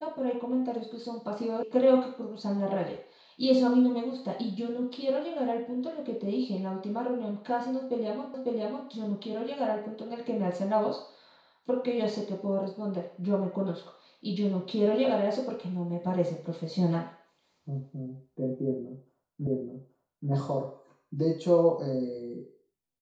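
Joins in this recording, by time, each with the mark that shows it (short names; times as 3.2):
1.63 sound cut off
8.34 repeat of the last 0.55 s
19.47 repeat of the last 0.83 s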